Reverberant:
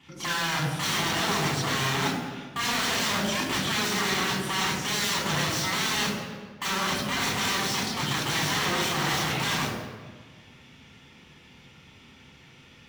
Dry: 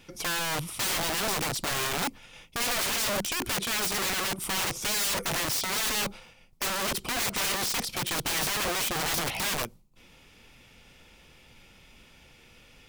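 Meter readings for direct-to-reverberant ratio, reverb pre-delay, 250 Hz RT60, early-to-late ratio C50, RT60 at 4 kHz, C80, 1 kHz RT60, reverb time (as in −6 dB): −2.5 dB, 3 ms, 1.8 s, 3.0 dB, 1.1 s, 5.0 dB, 1.4 s, 1.5 s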